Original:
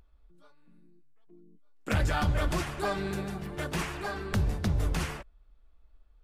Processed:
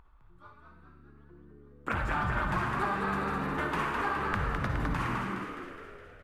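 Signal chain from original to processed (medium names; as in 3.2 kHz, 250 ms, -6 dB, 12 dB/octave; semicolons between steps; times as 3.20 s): FFT filter 640 Hz 0 dB, 1 kHz +14 dB, 5.5 kHz -8 dB; compression, threshold -30 dBFS, peak gain reduction 11.5 dB; frequency-shifting echo 208 ms, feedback 58%, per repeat +72 Hz, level -5 dB; on a send at -5 dB: reverberation, pre-delay 51 ms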